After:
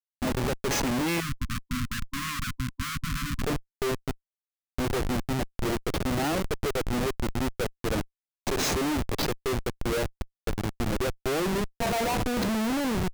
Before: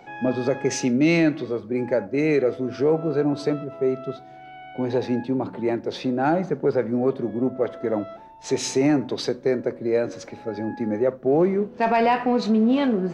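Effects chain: tilt +1.5 dB/oct; Schmitt trigger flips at -25.5 dBFS; 1.2–3.42 brick-wall FIR band-stop 280–1000 Hz; gain -1.5 dB

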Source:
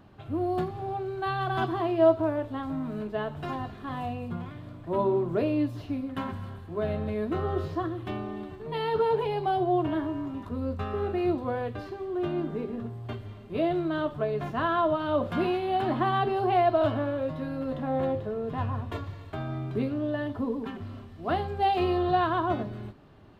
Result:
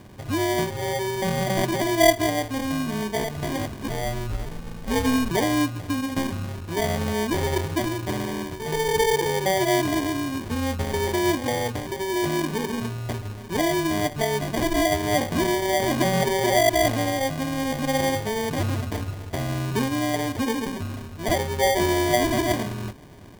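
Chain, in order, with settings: in parallel at +1.5 dB: compressor, threshold -34 dBFS, peak gain reduction 17.5 dB; 3.88–5.31 on the sum: inverted band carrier 2800 Hz; sample-and-hold 33×; gain +1.5 dB

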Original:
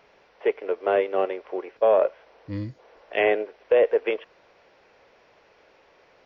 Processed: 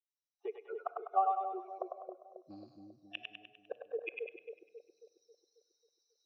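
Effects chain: per-bin expansion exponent 3; recorder AGC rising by 35 dB/s; low shelf 330 Hz -12 dB; flipped gate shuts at -20 dBFS, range -33 dB; vowel filter a; split-band echo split 580 Hz, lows 0.271 s, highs 0.1 s, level -3 dB; on a send at -16.5 dB: reverb RT60 1.4 s, pre-delay 5 ms; on the sum: gain +7 dB

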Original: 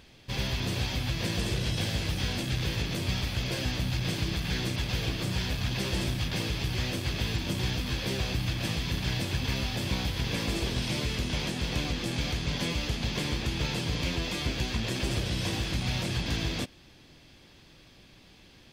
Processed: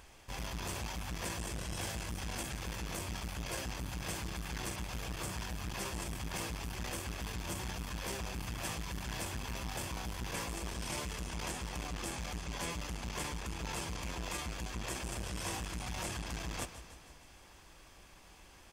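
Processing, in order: graphic EQ 125/250/500/1000/2000/4000/8000 Hz -12/-9/-4/+4/-3/-12/+6 dB; feedback echo 0.157 s, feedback 58%, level -17 dB; reverse; compressor, threshold -36 dBFS, peak gain reduction 7 dB; reverse; core saturation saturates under 330 Hz; gain +3 dB

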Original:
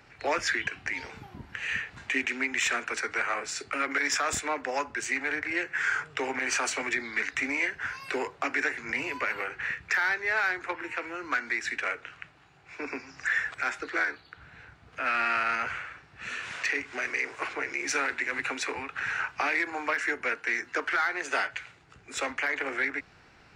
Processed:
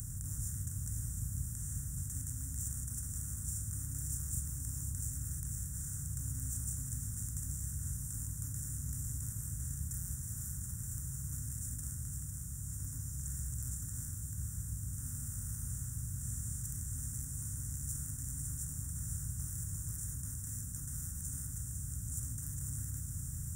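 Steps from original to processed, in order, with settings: per-bin compression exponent 0.2; inverse Chebyshev band-stop 340–4700 Hz, stop band 50 dB; split-band echo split 980 Hz, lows 0.147 s, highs 0.504 s, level -7 dB; gain +2 dB

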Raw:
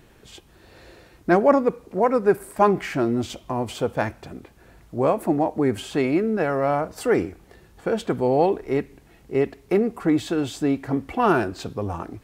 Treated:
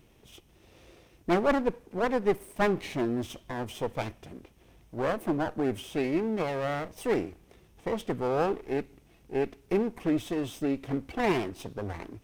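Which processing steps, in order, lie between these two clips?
minimum comb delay 0.34 ms; gain -6.5 dB

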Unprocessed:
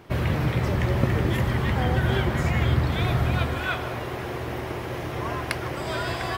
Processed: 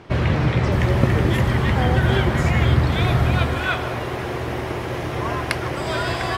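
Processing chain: LPF 6500 Hz 12 dB/oct, from 0.72 s 12000 Hz; gain +5 dB

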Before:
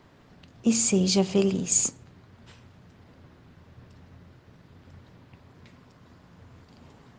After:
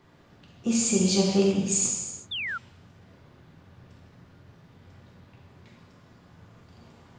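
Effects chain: non-linear reverb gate 0.4 s falling, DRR -2.5 dB; painted sound fall, 2.31–2.58, 1300–3700 Hz -27 dBFS; gain -4.5 dB

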